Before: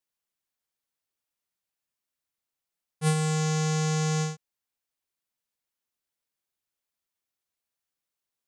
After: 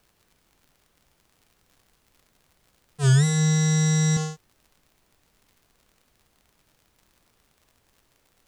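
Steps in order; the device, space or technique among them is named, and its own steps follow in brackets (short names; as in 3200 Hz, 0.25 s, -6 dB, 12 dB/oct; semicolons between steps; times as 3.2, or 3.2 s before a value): notch 2300 Hz, Q 6.9; 3.03–4.17 flutter echo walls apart 4.5 m, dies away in 1.1 s; warped LP (record warp 33 1/3 rpm, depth 250 cents; crackle 77/s -46 dBFS; pink noise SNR 39 dB)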